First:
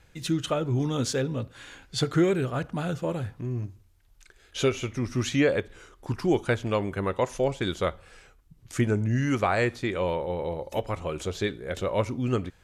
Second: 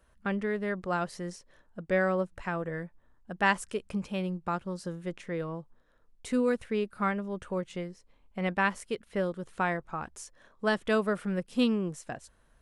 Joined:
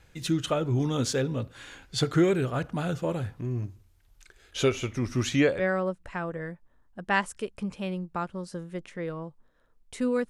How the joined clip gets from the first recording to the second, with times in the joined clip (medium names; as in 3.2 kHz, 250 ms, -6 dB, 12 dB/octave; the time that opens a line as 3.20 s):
first
5.55 s: go over to second from 1.87 s, crossfade 0.20 s